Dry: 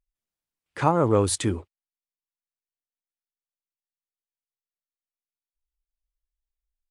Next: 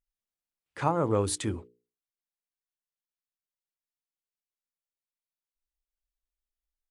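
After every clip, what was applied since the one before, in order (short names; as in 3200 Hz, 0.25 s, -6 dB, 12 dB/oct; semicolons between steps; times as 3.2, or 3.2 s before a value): notches 60/120/180/240/300/360/420/480 Hz; gain -5.5 dB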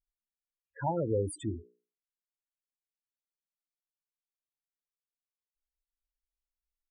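loudest bins only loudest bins 8; dynamic EQ 1800 Hz, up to +6 dB, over -48 dBFS, Q 1.1; gain -2.5 dB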